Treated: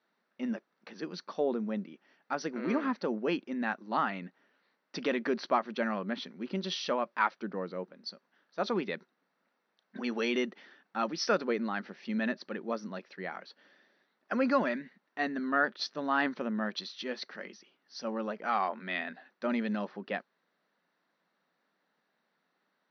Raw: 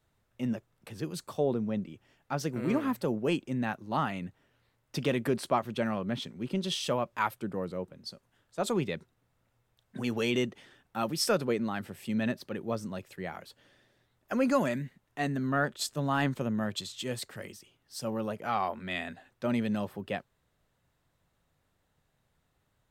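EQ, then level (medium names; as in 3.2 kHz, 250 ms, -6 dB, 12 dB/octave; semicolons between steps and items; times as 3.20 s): brick-wall FIR high-pass 170 Hz; rippled Chebyshev low-pass 6 kHz, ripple 6 dB; distance through air 58 m; +4.0 dB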